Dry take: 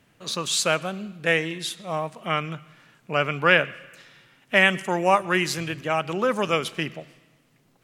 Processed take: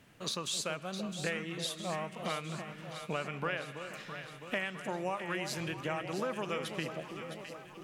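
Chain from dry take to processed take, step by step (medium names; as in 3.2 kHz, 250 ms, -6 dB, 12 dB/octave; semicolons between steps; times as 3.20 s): compression 6:1, threshold -34 dBFS, peak gain reduction 20.5 dB; on a send: echo whose repeats swap between lows and highs 330 ms, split 900 Hz, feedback 79%, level -7 dB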